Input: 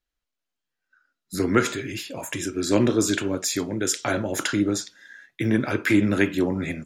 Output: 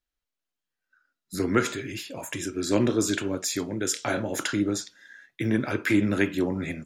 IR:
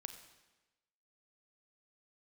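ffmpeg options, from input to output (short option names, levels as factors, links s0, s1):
-filter_complex "[0:a]asettb=1/sr,asplit=3[s0][s1][s2];[s0]atrim=end=3.934[s3];[s1]atrim=start=3.93:end=4.36,asetpts=PTS-STARTPTS,afade=t=in:d=0.004:c=qsin,afade=t=out:st=0.426:d=0.004:c=qsin,asplit=2[s4][s5];[s5]adelay=26,volume=0.376[s6];[s4][s6]amix=inputs=2:normalize=0,atrim=end_sample=18963[s7];[s2]atrim=start=4.356[s8];[s3][s7]acrossfade=d=0.004:c1=hsin:c2=qsin[s9];[s9][s8]acrossfade=d=0.004:c1=qsin:c2=hsin,volume=0.708"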